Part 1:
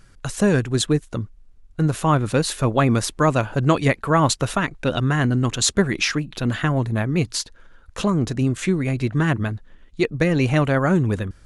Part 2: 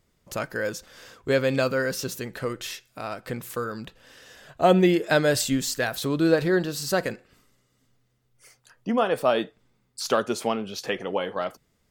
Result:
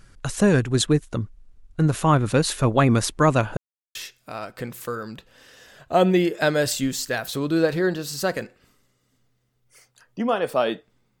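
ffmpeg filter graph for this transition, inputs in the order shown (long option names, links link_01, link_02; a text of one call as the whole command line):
ffmpeg -i cue0.wav -i cue1.wav -filter_complex "[0:a]apad=whole_dur=11.2,atrim=end=11.2,asplit=2[link_01][link_02];[link_01]atrim=end=3.57,asetpts=PTS-STARTPTS,afade=type=out:start_time=3.566:duration=0.004:curve=hsin[link_03];[link_02]atrim=start=3.57:end=3.95,asetpts=PTS-STARTPTS,volume=0[link_04];[1:a]atrim=start=2.64:end=9.89,asetpts=PTS-STARTPTS,afade=type=in:duration=0.004:curve=hsin[link_05];[link_03][link_04][link_05]concat=n=3:v=0:a=1" out.wav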